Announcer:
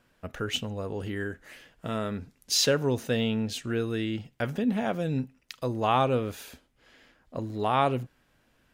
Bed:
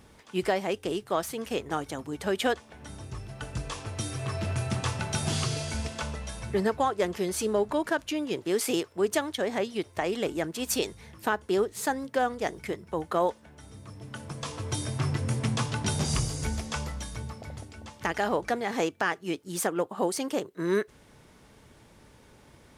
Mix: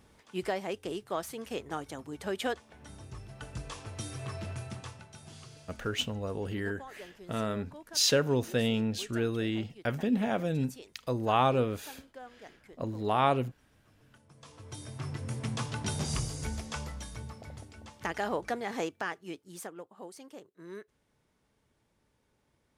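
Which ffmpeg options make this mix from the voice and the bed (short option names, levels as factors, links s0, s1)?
-filter_complex "[0:a]adelay=5450,volume=0.841[s0];[1:a]volume=3.16,afade=t=out:st=4.25:d=0.83:silence=0.177828,afade=t=in:st=14.28:d=1.49:silence=0.158489,afade=t=out:st=18.67:d=1.18:silence=0.211349[s1];[s0][s1]amix=inputs=2:normalize=0"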